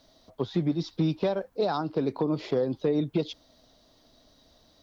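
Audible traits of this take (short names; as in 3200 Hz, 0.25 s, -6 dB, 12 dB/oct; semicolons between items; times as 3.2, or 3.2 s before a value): noise floor -62 dBFS; spectral tilt -6.5 dB/oct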